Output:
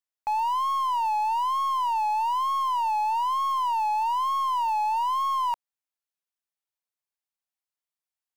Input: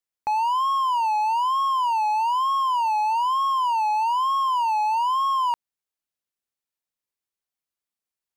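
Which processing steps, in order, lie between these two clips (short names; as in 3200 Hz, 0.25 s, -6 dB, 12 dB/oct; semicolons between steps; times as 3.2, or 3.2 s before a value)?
tracing distortion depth 0.11 ms; resonant low shelf 520 Hz -6.5 dB, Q 1.5; gain -4.5 dB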